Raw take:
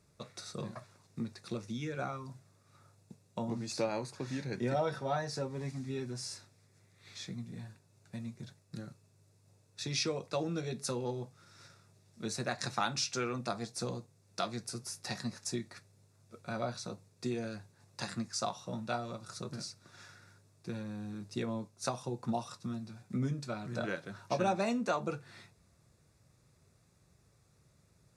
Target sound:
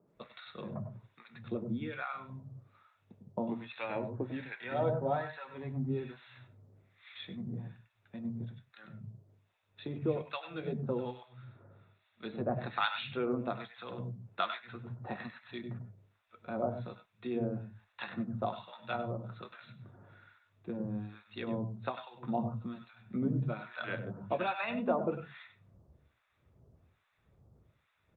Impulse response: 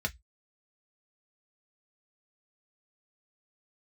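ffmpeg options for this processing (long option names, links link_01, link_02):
-filter_complex "[0:a]aresample=8000,aresample=44100,acrossover=split=160[link_01][link_02];[link_01]adelay=160[link_03];[link_03][link_02]amix=inputs=2:normalize=0,asplit=2[link_04][link_05];[1:a]atrim=start_sample=2205,adelay=97[link_06];[link_05][link_06]afir=irnorm=-1:irlink=0,volume=-13.5dB[link_07];[link_04][link_07]amix=inputs=2:normalize=0,acrossover=split=940[link_08][link_09];[link_08]aeval=exprs='val(0)*(1-1/2+1/2*cos(2*PI*1.2*n/s))':channel_layout=same[link_10];[link_09]aeval=exprs='val(0)*(1-1/2-1/2*cos(2*PI*1.2*n/s))':channel_layout=same[link_11];[link_10][link_11]amix=inputs=2:normalize=0,asettb=1/sr,asplit=3[link_12][link_13][link_14];[link_12]atrim=end=13.974[link_15];[link_13]atrim=start=13.97:end=15.26,asetpts=PTS-STARTPTS,afade=type=in:duration=0.004:curve=qsin,afade=type=out:start_time=1.286:duration=0.004:curve=qsin,equalizer=frequency=1300:width_type=o:width=1.5:gain=5[link_16];[link_14]atrim=start=15.256[link_17];[link_15][link_16]acrossfade=duration=0.004:curve1=hsin:curve2=qsin[link_18];[link_18][link_17]acrossfade=duration=0.004:curve1=qsin:curve2=hsin,volume=5.5dB" -ar 48000 -c:a libopus -b:a 48k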